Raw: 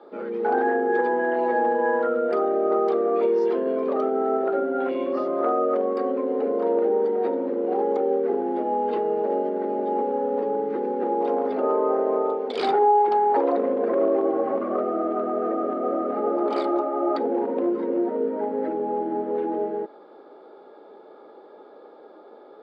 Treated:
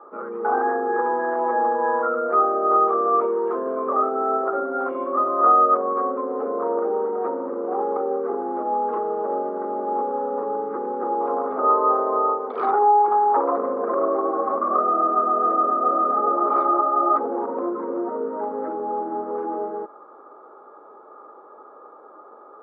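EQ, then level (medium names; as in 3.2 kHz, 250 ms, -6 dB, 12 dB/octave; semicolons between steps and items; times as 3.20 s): resonant low-pass 1.2 kHz, resonance Q 7.4; bass shelf 230 Hz -5 dB; -2.5 dB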